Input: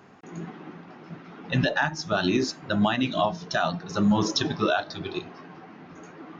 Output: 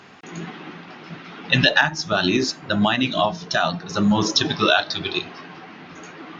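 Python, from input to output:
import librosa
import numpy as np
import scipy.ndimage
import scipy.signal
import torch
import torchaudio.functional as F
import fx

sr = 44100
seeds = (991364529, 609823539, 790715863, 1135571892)

y = fx.peak_eq(x, sr, hz=3500.0, db=fx.steps((0.0, 12.0), (1.81, 5.0), (4.49, 11.0)), octaves=2.3)
y = y * 10.0 ** (3.0 / 20.0)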